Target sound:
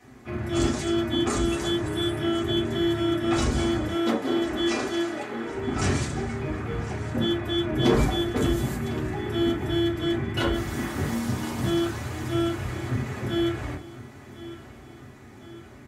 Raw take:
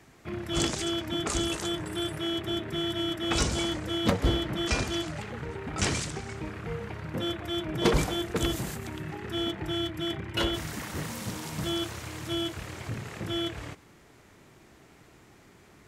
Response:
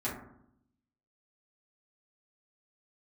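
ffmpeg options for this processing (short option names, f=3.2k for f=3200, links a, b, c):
-filter_complex "[0:a]asettb=1/sr,asplit=3[a][b][c];[a]atrim=end=3.874[d];[b]atrim=start=3.87:end=5.56,asetpts=PTS-STARTPTS,afade=t=in:d=0.004:c=qsin,afade=t=out:st=1.686:d=0.004:c=qsin,highpass=f=250:w=0.5412,highpass=f=250:w=1.3066[e];[c]atrim=start=5.556[f];[d][e]acrossfade=d=0.004:c1=hsin:c2=qsin[g];[g][f]acrossfade=d=0.004:c1=qsin:c2=hsin,alimiter=limit=-18.5dB:level=0:latency=1:release=353,aecho=1:1:1053|2106|3159|4212|5265:0.158|0.084|0.0445|0.0236|0.0125[h];[1:a]atrim=start_sample=2205,atrim=end_sample=3969[i];[h][i]afir=irnorm=-1:irlink=0"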